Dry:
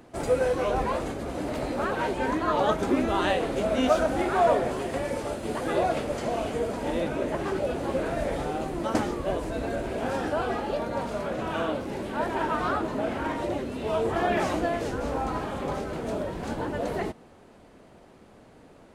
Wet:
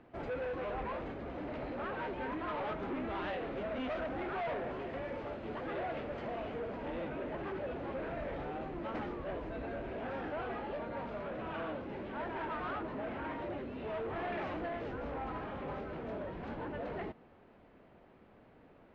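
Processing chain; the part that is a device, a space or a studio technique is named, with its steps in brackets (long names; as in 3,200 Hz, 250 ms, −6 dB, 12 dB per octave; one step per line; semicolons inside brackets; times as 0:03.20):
overdriven synthesiser ladder filter (soft clipping −26.5 dBFS, distortion −9 dB; transistor ladder low-pass 3,500 Hz, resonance 20%)
level −3 dB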